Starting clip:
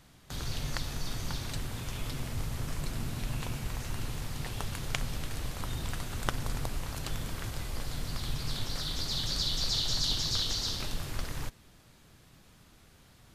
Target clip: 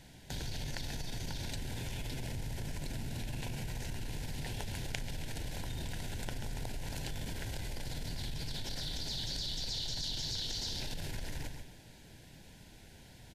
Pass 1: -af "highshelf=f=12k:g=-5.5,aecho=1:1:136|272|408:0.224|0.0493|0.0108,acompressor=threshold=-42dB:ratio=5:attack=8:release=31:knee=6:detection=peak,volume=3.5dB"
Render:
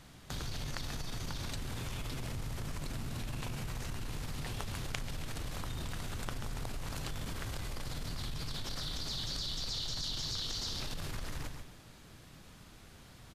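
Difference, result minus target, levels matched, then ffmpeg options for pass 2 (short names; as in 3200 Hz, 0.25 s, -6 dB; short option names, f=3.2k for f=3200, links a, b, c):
1000 Hz band +3.0 dB
-af "highshelf=f=12k:g=-5.5,aecho=1:1:136|272|408:0.224|0.0493|0.0108,acompressor=threshold=-42dB:ratio=5:attack=8:release=31:knee=6:detection=peak,asuperstop=centerf=1200:order=4:qfactor=2.5,volume=3.5dB"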